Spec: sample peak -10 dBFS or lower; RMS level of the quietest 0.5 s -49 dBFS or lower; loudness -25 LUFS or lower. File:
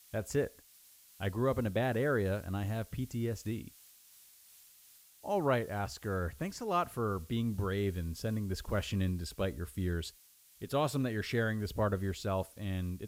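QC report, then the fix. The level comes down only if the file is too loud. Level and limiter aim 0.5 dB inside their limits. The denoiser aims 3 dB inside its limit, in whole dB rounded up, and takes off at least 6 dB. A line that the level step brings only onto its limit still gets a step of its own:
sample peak -18.0 dBFS: pass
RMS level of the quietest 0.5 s -62 dBFS: pass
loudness -35.0 LUFS: pass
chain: none needed

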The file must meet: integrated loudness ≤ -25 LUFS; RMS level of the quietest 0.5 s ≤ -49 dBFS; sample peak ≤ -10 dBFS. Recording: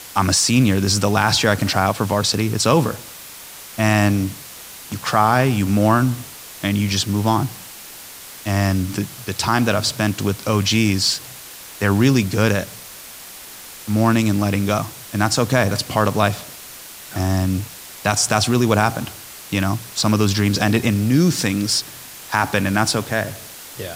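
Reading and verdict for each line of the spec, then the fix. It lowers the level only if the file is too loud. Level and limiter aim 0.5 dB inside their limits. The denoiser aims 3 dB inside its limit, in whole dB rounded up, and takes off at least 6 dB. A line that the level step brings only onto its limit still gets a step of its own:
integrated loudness -18.5 LUFS: fail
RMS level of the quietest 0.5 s -38 dBFS: fail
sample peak -1.5 dBFS: fail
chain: noise reduction 7 dB, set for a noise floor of -38 dBFS; trim -7 dB; peak limiter -10.5 dBFS

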